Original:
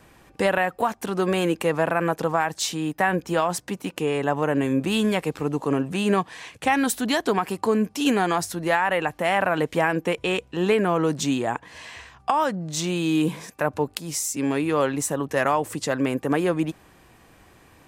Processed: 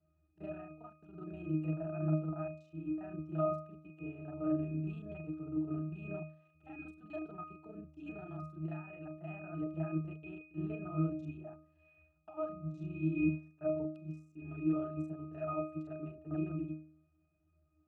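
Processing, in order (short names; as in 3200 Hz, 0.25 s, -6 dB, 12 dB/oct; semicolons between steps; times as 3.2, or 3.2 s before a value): local time reversal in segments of 31 ms; octave resonator D#, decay 0.65 s; upward expander 1.5:1, over -55 dBFS; gain +6 dB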